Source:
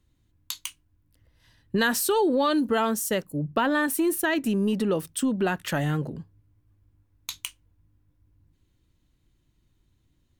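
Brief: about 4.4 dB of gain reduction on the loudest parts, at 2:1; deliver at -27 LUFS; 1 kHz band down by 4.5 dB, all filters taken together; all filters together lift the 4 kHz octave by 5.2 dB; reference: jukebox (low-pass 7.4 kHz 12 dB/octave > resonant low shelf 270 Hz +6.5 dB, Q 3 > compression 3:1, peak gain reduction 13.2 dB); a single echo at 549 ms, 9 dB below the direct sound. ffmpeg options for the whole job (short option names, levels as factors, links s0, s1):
-af "equalizer=f=1000:t=o:g=-5.5,equalizer=f=4000:t=o:g=7.5,acompressor=threshold=0.0398:ratio=2,lowpass=7400,lowshelf=f=270:t=q:w=3:g=6.5,aecho=1:1:549:0.355,acompressor=threshold=0.0224:ratio=3,volume=2.51"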